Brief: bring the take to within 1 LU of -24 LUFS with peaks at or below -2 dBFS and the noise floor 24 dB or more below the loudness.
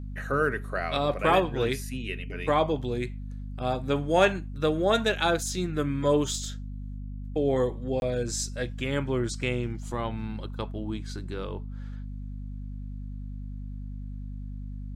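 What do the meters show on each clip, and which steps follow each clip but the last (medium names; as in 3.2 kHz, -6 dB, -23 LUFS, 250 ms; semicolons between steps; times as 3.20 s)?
dropouts 1; longest dropout 21 ms; hum 50 Hz; highest harmonic 250 Hz; hum level -34 dBFS; loudness -28.0 LUFS; peak level -10.0 dBFS; loudness target -24.0 LUFS
-> interpolate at 8.00 s, 21 ms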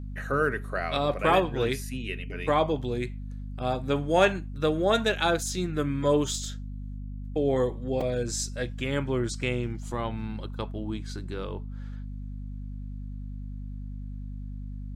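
dropouts 0; hum 50 Hz; highest harmonic 250 Hz; hum level -34 dBFS
-> hum notches 50/100/150/200/250 Hz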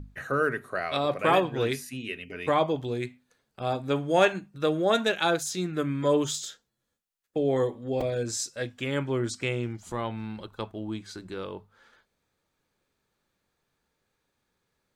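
hum not found; loudness -28.5 LUFS; peak level -10.0 dBFS; loudness target -24.0 LUFS
-> trim +4.5 dB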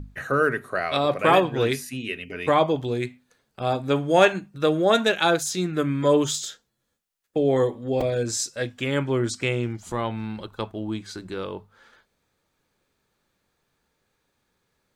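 loudness -24.0 LUFS; peak level -5.5 dBFS; noise floor -75 dBFS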